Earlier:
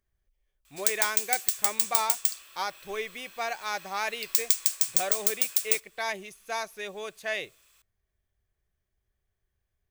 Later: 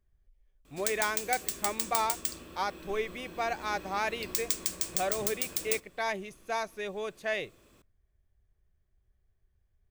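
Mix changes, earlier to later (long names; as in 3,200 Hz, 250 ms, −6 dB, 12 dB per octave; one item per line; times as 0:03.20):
background: remove high-pass filter 1,300 Hz 12 dB per octave
master: add spectral tilt −2 dB per octave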